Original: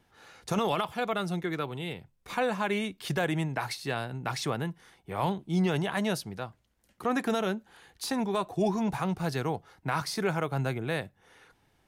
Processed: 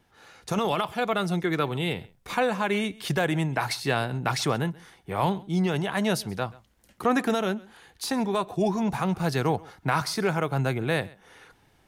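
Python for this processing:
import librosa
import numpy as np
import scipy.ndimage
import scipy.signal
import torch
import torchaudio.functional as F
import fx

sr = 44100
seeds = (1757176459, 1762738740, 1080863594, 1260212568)

p1 = fx.rider(x, sr, range_db=4, speed_s=0.5)
p2 = p1 + fx.echo_single(p1, sr, ms=132, db=-23.0, dry=0)
y = p2 * 10.0 ** (4.5 / 20.0)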